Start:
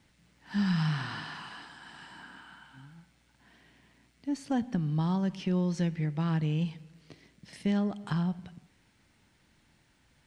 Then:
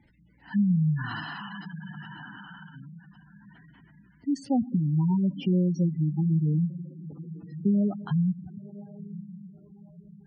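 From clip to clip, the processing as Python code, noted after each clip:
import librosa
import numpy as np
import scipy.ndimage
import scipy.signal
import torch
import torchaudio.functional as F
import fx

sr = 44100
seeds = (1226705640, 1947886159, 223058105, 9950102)

y = fx.echo_diffused(x, sr, ms=1040, feedback_pct=41, wet_db=-16)
y = fx.spec_gate(y, sr, threshold_db=-15, keep='strong')
y = y * librosa.db_to_amplitude(5.0)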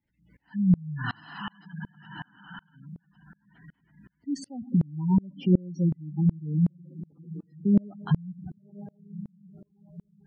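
y = fx.tremolo_decay(x, sr, direction='swelling', hz=2.7, depth_db=32)
y = y * librosa.db_to_amplitude(7.5)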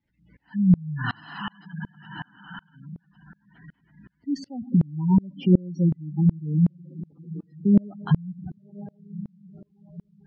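y = scipy.signal.sosfilt(scipy.signal.butter(4, 5300.0, 'lowpass', fs=sr, output='sos'), x)
y = y * librosa.db_to_amplitude(3.5)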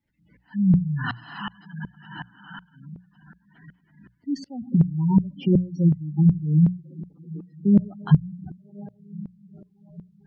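y = fx.hum_notches(x, sr, base_hz=60, count=3)
y = fx.dynamic_eq(y, sr, hz=150.0, q=4.0, threshold_db=-34.0, ratio=4.0, max_db=6)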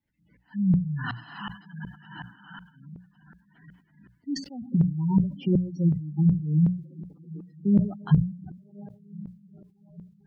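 y = fx.sustainer(x, sr, db_per_s=130.0)
y = y * librosa.db_to_amplitude(-4.0)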